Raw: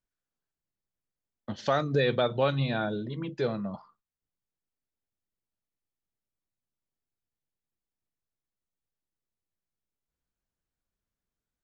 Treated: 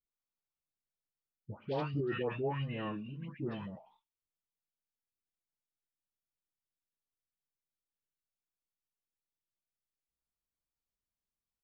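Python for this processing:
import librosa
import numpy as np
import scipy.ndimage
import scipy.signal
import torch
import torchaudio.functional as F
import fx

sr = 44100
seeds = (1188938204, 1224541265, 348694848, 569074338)

y = fx.dispersion(x, sr, late='highs', ms=145.0, hz=1400.0)
y = fx.formant_shift(y, sr, semitones=-5)
y = F.gain(torch.from_numpy(y), -8.5).numpy()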